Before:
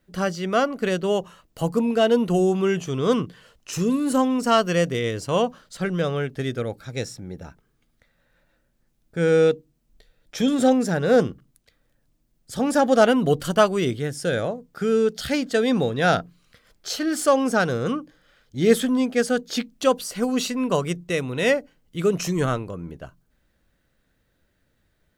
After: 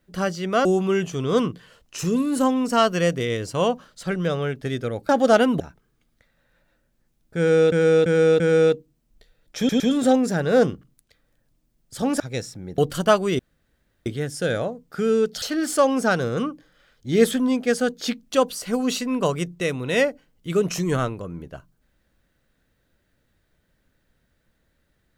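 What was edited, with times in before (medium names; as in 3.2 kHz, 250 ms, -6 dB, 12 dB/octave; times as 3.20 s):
0.65–2.39 s: delete
6.83–7.41 s: swap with 12.77–13.28 s
9.19–9.53 s: loop, 4 plays
10.37 s: stutter 0.11 s, 3 plays
13.89 s: insert room tone 0.67 s
15.25–16.91 s: delete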